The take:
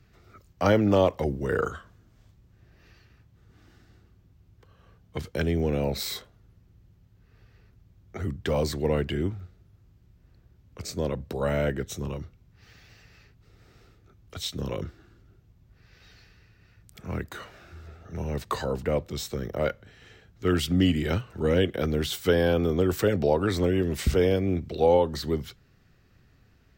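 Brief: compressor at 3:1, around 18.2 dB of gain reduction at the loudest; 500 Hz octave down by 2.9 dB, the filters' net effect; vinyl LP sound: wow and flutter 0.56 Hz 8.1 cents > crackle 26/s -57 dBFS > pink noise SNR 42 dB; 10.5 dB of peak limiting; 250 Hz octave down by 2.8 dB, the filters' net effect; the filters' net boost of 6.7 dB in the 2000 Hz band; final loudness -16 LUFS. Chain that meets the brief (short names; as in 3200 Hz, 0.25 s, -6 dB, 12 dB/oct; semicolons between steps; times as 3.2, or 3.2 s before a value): bell 250 Hz -3 dB; bell 500 Hz -3 dB; bell 2000 Hz +9 dB; compressor 3:1, threshold -44 dBFS; limiter -34 dBFS; wow and flutter 0.56 Hz 8.1 cents; crackle 26/s -57 dBFS; pink noise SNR 42 dB; gain +30 dB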